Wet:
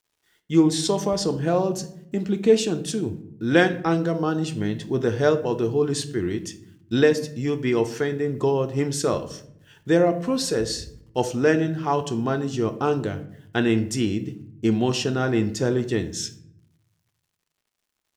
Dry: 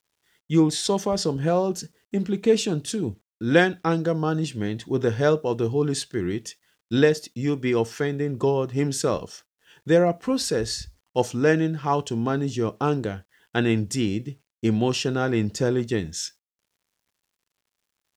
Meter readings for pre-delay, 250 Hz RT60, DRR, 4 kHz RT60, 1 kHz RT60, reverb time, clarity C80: 3 ms, 1.1 s, 9.0 dB, 0.40 s, 0.65 s, 0.70 s, 17.5 dB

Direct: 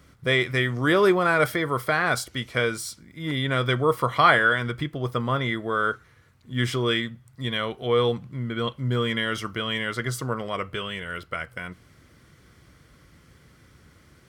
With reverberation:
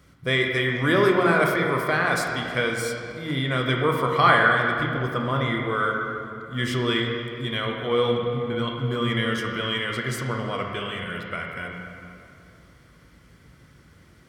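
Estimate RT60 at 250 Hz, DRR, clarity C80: 2.8 s, 1.0 dB, 3.5 dB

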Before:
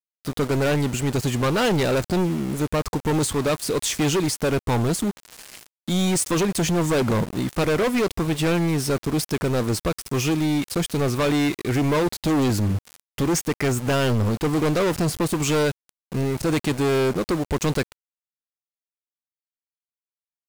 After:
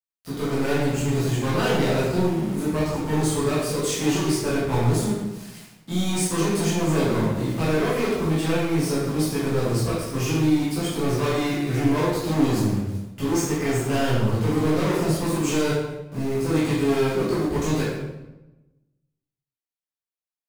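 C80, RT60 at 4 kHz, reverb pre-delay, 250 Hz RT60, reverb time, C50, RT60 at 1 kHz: 2.5 dB, 0.75 s, 10 ms, 1.3 s, 1.0 s, −0.5 dB, 0.95 s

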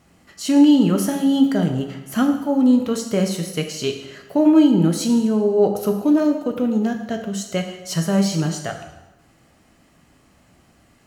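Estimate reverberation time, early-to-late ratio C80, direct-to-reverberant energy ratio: 1.0 s, 9.0 dB, 3.5 dB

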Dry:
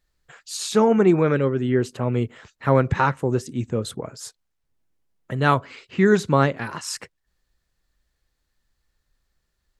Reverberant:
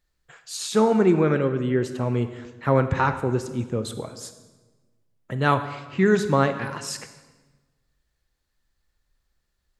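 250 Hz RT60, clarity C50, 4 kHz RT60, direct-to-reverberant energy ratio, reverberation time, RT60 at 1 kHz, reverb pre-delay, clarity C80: 1.5 s, 10.5 dB, 1.0 s, 9.5 dB, 1.3 s, 1.2 s, 28 ms, 12.5 dB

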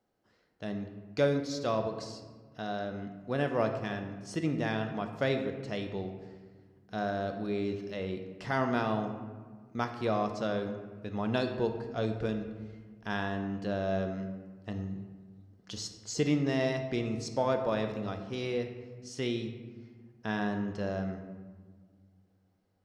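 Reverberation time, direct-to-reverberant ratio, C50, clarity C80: 1.6 s, 5.5 dB, 7.5 dB, 9.0 dB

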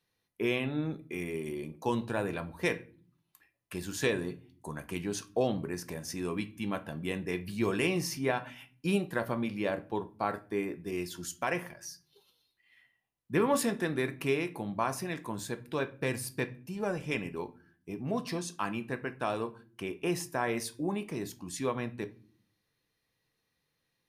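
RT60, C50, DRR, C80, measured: non-exponential decay, 18.5 dB, 9.5 dB, 24.0 dB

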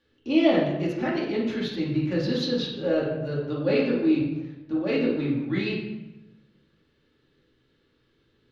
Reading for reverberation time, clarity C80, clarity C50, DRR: 1.1 s, 5.5 dB, 2.0 dB, −7.0 dB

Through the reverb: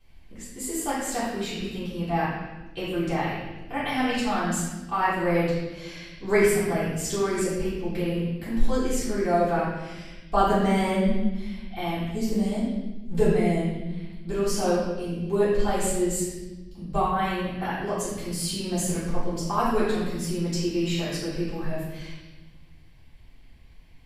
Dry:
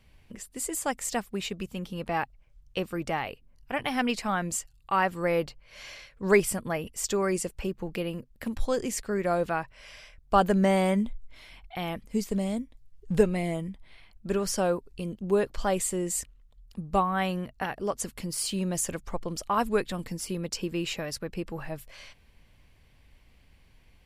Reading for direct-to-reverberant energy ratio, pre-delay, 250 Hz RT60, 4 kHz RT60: −12.0 dB, 3 ms, 2.0 s, 1.2 s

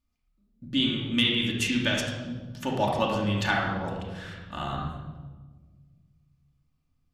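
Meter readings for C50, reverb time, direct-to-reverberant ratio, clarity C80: 1.0 dB, 1.4 s, −3.5 dB, 4.0 dB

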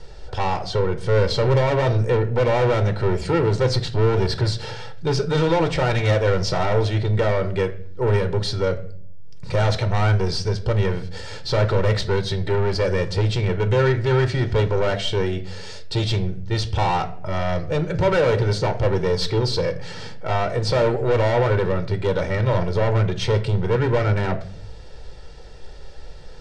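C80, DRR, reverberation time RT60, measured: 19.0 dB, 9.0 dB, 0.55 s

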